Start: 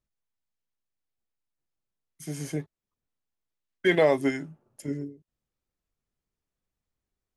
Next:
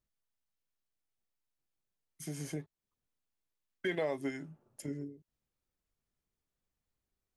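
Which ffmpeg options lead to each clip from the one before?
-af "acompressor=threshold=-38dB:ratio=2,volume=-2dB"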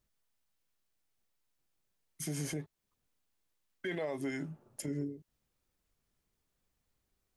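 -af "alimiter=level_in=11dB:limit=-24dB:level=0:latency=1:release=72,volume=-11dB,volume=6.5dB"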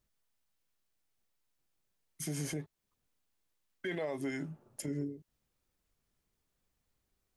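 -af anull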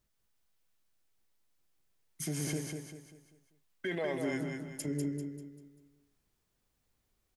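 -af "aecho=1:1:196|392|588|784|980:0.562|0.225|0.09|0.036|0.0144,volume=1.5dB"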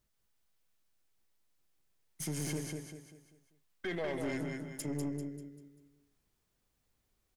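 -af "aeval=exprs='(tanh(35.5*val(0)+0.4)-tanh(0.4))/35.5':c=same,volume=1dB"

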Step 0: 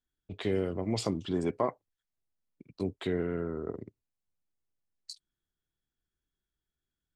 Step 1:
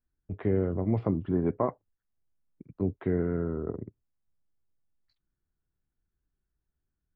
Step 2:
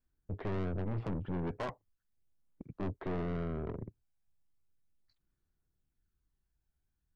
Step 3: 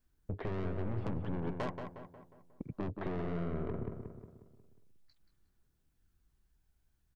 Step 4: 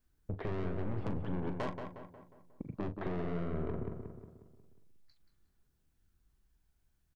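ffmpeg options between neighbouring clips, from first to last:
-af "lowpass=f=1.8k:w=0.5412,lowpass=f=1.8k:w=1.3066,lowshelf=f=220:g=9"
-af "aphaser=in_gain=1:out_gain=1:delay=1.3:decay=0.3:speed=0.37:type=sinusoidal,aeval=exprs='(tanh(44.7*val(0)+0.4)-tanh(0.4))/44.7':c=same"
-filter_complex "[0:a]acompressor=threshold=-41dB:ratio=6,asplit=2[a][b];[b]adelay=180,lowpass=f=2.6k:p=1,volume=-6dB,asplit=2[c][d];[d]adelay=180,lowpass=f=2.6k:p=1,volume=0.51,asplit=2[e][f];[f]adelay=180,lowpass=f=2.6k:p=1,volume=0.51,asplit=2[g][h];[h]adelay=180,lowpass=f=2.6k:p=1,volume=0.51,asplit=2[i][j];[j]adelay=180,lowpass=f=2.6k:p=1,volume=0.51,asplit=2[k][l];[l]adelay=180,lowpass=f=2.6k:p=1,volume=0.51[m];[c][e][g][i][k][m]amix=inputs=6:normalize=0[n];[a][n]amix=inputs=2:normalize=0,volume=6dB"
-filter_complex "[0:a]asplit=2[a][b];[b]adelay=39,volume=-11dB[c];[a][c]amix=inputs=2:normalize=0"

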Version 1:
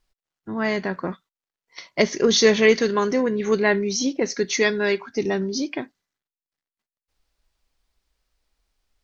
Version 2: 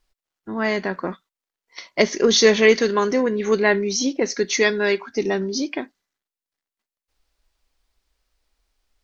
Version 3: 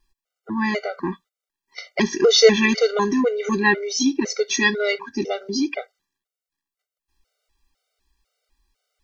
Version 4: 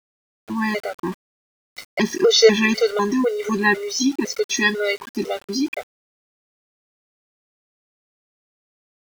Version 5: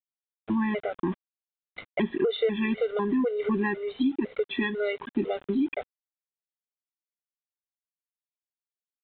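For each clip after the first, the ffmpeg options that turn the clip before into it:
-af "equalizer=f=130:t=o:w=0.55:g=-13.5,volume=2dB"
-af "afftfilt=real='re*gt(sin(2*PI*2*pts/sr)*(1-2*mod(floor(b*sr/1024/390),2)),0)':imag='im*gt(sin(2*PI*2*pts/sr)*(1-2*mod(floor(b*sr/1024/390),2)),0)':win_size=1024:overlap=0.75,volume=3.5dB"
-af "aeval=exprs='val(0)*gte(abs(val(0)),0.0178)':c=same"
-af "aresample=8000,aresample=44100,acompressor=threshold=-26dB:ratio=4,tiltshelf=f=640:g=4"

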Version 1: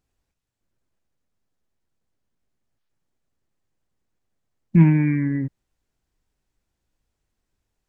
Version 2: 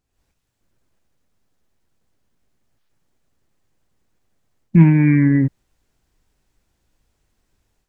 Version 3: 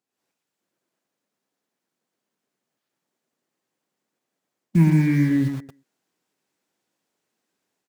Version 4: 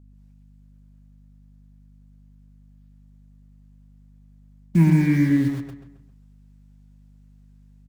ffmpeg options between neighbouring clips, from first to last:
-af "dynaudnorm=f=110:g=3:m=9.5dB"
-filter_complex "[0:a]aecho=1:1:117|234|351:0.447|0.0938|0.0197,acrossover=split=180|790[a][b][c];[a]acrusher=bits=5:mix=0:aa=0.000001[d];[d][b][c]amix=inputs=3:normalize=0,volume=-6dB"
-filter_complex "[0:a]aeval=exprs='val(0)+0.00355*(sin(2*PI*50*n/s)+sin(2*PI*2*50*n/s)/2+sin(2*PI*3*50*n/s)/3+sin(2*PI*4*50*n/s)/4+sin(2*PI*5*50*n/s)/5)':c=same,asplit=2[a][b];[b]adelay=134,lowpass=f=3.9k:p=1,volume=-9.5dB,asplit=2[c][d];[d]adelay=134,lowpass=f=3.9k:p=1,volume=0.4,asplit=2[e][f];[f]adelay=134,lowpass=f=3.9k:p=1,volume=0.4,asplit=2[g][h];[h]adelay=134,lowpass=f=3.9k:p=1,volume=0.4[i];[c][e][g][i]amix=inputs=4:normalize=0[j];[a][j]amix=inputs=2:normalize=0"

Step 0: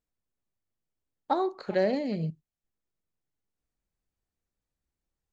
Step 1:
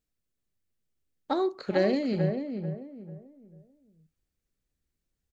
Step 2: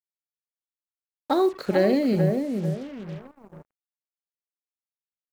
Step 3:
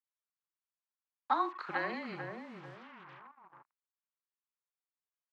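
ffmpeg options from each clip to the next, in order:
-filter_complex "[0:a]equalizer=f=870:w=1.3:g=-8.5,asplit=2[a][b];[b]adelay=441,lowpass=f=1.2k:p=1,volume=-5.5dB,asplit=2[c][d];[d]adelay=441,lowpass=f=1.2k:p=1,volume=0.33,asplit=2[e][f];[f]adelay=441,lowpass=f=1.2k:p=1,volume=0.33,asplit=2[g][h];[h]adelay=441,lowpass=f=1.2k:p=1,volume=0.33[i];[c][e][g][i]amix=inputs=4:normalize=0[j];[a][j]amix=inputs=2:normalize=0,volume=3.5dB"
-filter_complex "[0:a]asplit=2[a][b];[b]alimiter=limit=-20.5dB:level=0:latency=1,volume=1.5dB[c];[a][c]amix=inputs=2:normalize=0,acrusher=bits=6:mix=0:aa=0.5,adynamicequalizer=threshold=0.01:dfrequency=1900:dqfactor=0.7:tfrequency=1900:tqfactor=0.7:attack=5:release=100:ratio=0.375:range=2.5:mode=cutabove:tftype=highshelf"
-af "highpass=340,lowpass=2.5k,lowshelf=f=760:t=q:w=3:g=-10.5,afreqshift=-24,volume=-4dB"

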